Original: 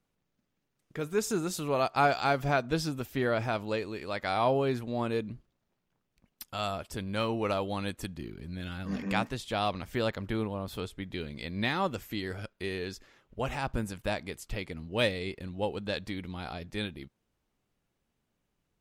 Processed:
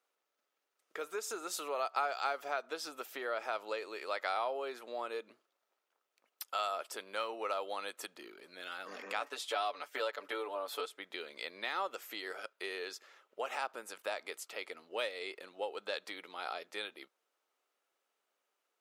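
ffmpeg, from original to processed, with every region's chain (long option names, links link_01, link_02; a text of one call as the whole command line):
ffmpeg -i in.wav -filter_complex "[0:a]asettb=1/sr,asplit=3[link_01][link_02][link_03];[link_01]atrim=end=9.204[link_04];[link_02]atrim=start=9.2:end=10.86,asetpts=PTS-STARTPTS,afade=type=in:duration=0.004:curve=qsin,afade=type=out:start_time=1.656:duration=0.004:curve=qsin,highpass=190,agate=range=-33dB:threshold=-46dB:ratio=3:release=100:detection=peak,aecho=1:1:6.9:0.86,atrim=end_sample=73206[link_05];[link_03]atrim=start=10.856[link_06];[link_04][link_05]acrossfade=duration=0.004:curve1=hsin:curve2=qsin[link_07];[link_07][link_06]acrossfade=duration=0.004:curve1=qsin:curve2=hsin,acompressor=threshold=-32dB:ratio=6,highpass=frequency=440:width=0.5412,highpass=frequency=440:width=1.3066,equalizer=frequency=1300:width=7.9:gain=7.5" out.wav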